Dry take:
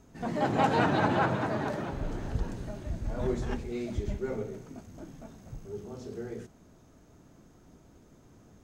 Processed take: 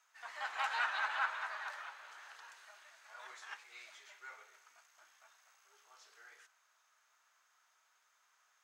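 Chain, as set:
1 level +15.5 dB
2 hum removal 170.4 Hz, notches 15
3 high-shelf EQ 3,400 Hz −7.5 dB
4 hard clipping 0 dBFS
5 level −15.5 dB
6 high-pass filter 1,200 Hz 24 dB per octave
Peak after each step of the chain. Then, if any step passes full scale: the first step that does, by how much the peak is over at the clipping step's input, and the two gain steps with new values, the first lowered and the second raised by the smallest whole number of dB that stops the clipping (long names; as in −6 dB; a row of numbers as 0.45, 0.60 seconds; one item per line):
+3.5, +3.0, +3.0, 0.0, −15.5, −23.0 dBFS
step 1, 3.0 dB
step 1 +12.5 dB, step 5 −12.5 dB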